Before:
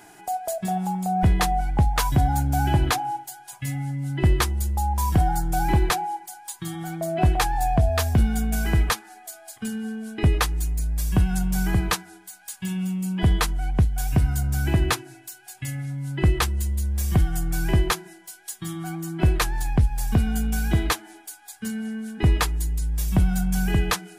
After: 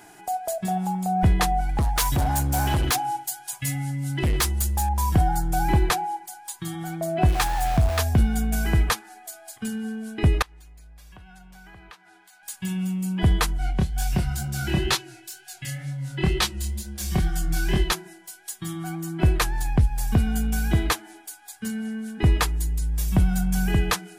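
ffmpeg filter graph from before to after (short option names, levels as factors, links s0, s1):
-filter_complex "[0:a]asettb=1/sr,asplit=3[s0][s1][s2];[s0]atrim=end=1.694[s3];[s1]atrim=start=1.69:end=4.89,asetpts=PTS-STARTPTS,afade=t=in:d=0.004:c=qsin,afade=t=out:st=3.196:d=0.004:c=qsin,highshelf=f=2500:g=9,asoftclip=type=hard:threshold=0.119[s4];[s2]atrim=start=4.886[s5];[s3][s4]acrossfade=d=0.004:c1=hsin:c2=qsin[s6];[s6][s5]acrossfade=d=0.004:c1=qsin:c2=hsin,asettb=1/sr,asplit=3[s7][s8][s9];[s7]atrim=end=7.284[s10];[s8]atrim=start=7.28:end=7.99,asetpts=PTS-STARTPTS,afade=t=in:d=0.004:c=qsin,afade=t=out:st=0.706:d=0.004:c=qsin,equalizer=f=500:w=1.9:g=-8,aeval=exprs='val(0)*gte(abs(val(0)),0.0422)':c=same[s11];[s9]atrim=start=7.986[s12];[s10][s11]acrossfade=d=0.004:c1=hsin:c2=qsin[s13];[s13][s12]acrossfade=d=0.004:c1=qsin:c2=hsin,asettb=1/sr,asplit=3[s14][s15][s16];[s14]atrim=end=10.424[s17];[s15]atrim=start=10.42:end=12.43,asetpts=PTS-STARTPTS,afade=t=in:d=0.004:c=qsin,afade=t=out:st=2.006:d=0.004:c=qsin,acrossover=split=540 4500:gain=0.224 1 0.224[s18][s19][s20];[s18][s19][s20]amix=inputs=3:normalize=0,acompressor=threshold=0.00355:ratio=3:attack=3.2:release=140:knee=1:detection=peak[s21];[s16]atrim=start=12.426[s22];[s17][s21]acrossfade=d=0.004:c1=hsin:c2=qsin[s23];[s23][s22]acrossfade=d=0.004:c1=qsin:c2=hsin,asettb=1/sr,asplit=3[s24][s25][s26];[s24]atrim=end=13.584[s27];[s25]atrim=start=13.58:end=17.92,asetpts=PTS-STARTPTS,afade=t=in:d=0.004:c=qsin,afade=t=out:st=4.336:d=0.004:c=qsin,equalizer=f=4200:t=o:w=1.6:g=7.5,aecho=1:1:5.4:0.51,atrim=end_sample=191394,flanger=delay=20:depth=7.6:speed=2.1[s28];[s26]atrim=start=17.916[s29];[s27][s28]acrossfade=d=0.004:c1=hsin:c2=qsin[s30];[s30][s29]acrossfade=d=0.004:c1=qsin:c2=hsin"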